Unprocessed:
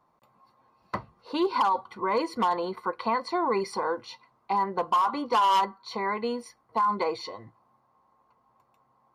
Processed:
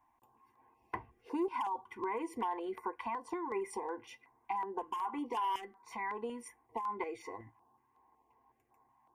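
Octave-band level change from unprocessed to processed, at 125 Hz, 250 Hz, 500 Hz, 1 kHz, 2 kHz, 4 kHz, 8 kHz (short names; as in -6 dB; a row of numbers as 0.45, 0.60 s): n/a, -8.5 dB, -11.0 dB, -12.0 dB, -10.0 dB, -17.0 dB, -7.0 dB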